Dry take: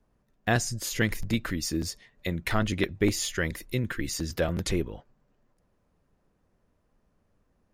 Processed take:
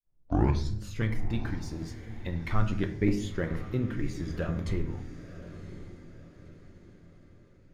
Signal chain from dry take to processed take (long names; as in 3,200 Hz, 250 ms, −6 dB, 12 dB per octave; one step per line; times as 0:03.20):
turntable start at the beginning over 0.83 s
low-pass filter 1,400 Hz 6 dB per octave
hum removal 80.41 Hz, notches 32
in parallel at −10 dB: dead-zone distortion −40 dBFS
on the sum: phase shifter 0.28 Hz, delay 1.5 ms, feedback 46%
on a send: feedback delay with all-pass diffusion 1,029 ms, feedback 42%, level −13 dB
on the sum: rectangular room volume 110 cubic metres, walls mixed, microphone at 0.37 metres
level −6.5 dB